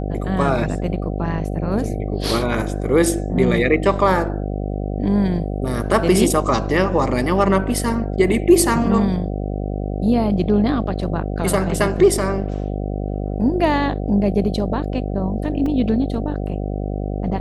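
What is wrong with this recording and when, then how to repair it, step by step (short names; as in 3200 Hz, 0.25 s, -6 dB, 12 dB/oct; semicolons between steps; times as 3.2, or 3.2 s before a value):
buzz 50 Hz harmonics 15 -24 dBFS
15.66 gap 2.9 ms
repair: de-hum 50 Hz, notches 15; interpolate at 15.66, 2.9 ms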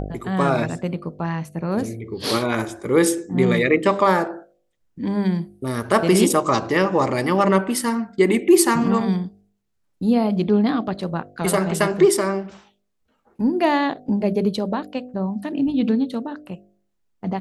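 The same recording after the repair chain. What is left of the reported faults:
none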